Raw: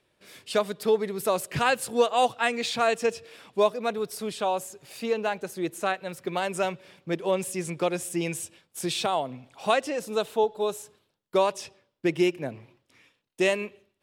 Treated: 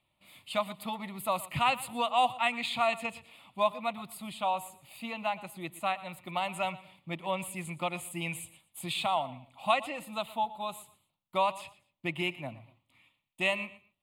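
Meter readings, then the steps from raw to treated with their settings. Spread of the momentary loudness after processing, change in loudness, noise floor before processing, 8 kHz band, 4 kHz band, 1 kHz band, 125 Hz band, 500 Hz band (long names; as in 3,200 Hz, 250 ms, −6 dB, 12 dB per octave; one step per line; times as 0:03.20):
14 LU, −5.0 dB, −75 dBFS, −8.5 dB, −2.5 dB, −1.5 dB, −4.5 dB, −10.0 dB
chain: dynamic equaliser 1,700 Hz, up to +5 dB, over −40 dBFS, Q 0.74
phaser with its sweep stopped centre 1,600 Hz, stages 6
repeating echo 118 ms, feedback 26%, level −18 dB
level −3 dB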